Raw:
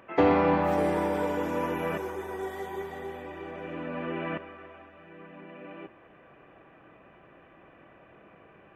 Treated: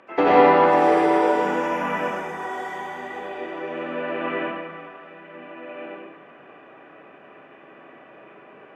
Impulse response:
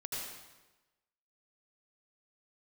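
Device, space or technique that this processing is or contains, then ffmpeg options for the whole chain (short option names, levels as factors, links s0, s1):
supermarket ceiling speaker: -filter_complex "[0:a]asettb=1/sr,asplit=3[s0][s1][s2];[s0]atrim=end=1.324[s3];[s1]atrim=start=1.32:end=3.1,asetpts=PTS-STARTPTS,afade=t=in:d=0.004:c=qsin,afade=t=out:st=1.776:d=0.004:c=qsin,equalizer=f=200:t=o:w=0.33:g=9,equalizer=f=400:t=o:w=0.33:g=-12,equalizer=f=4000:t=o:w=0.33:g=-7[s4];[s2]atrim=start=3.096[s5];[s3][s4]acrossfade=d=0.004:c1=hsin:c2=qsin[s6];[s6][s5]acrossfade=d=0.004:c1=qsin:c2=hsin,highpass=240,lowpass=6800[s7];[1:a]atrim=start_sample=2205[s8];[s7][s8]afir=irnorm=-1:irlink=0,volume=2.37"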